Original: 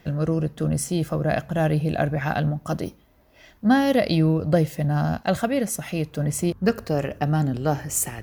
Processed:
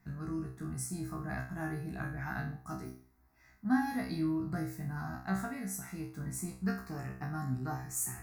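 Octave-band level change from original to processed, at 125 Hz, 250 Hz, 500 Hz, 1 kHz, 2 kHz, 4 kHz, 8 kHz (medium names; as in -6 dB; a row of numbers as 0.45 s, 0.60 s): -15.0 dB, -12.5 dB, -22.0 dB, -13.5 dB, -10.5 dB, -19.0 dB, -10.5 dB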